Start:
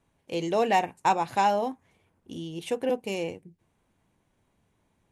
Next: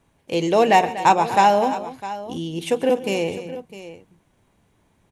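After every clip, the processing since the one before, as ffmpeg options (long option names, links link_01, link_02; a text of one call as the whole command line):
ffmpeg -i in.wav -af "aecho=1:1:136|242|656:0.126|0.188|0.178,volume=8dB" out.wav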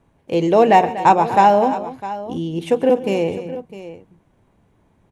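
ffmpeg -i in.wav -af "highshelf=frequency=2100:gain=-11.5,volume=4.5dB" out.wav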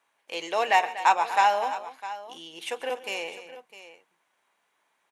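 ffmpeg -i in.wav -af "highpass=1300" out.wav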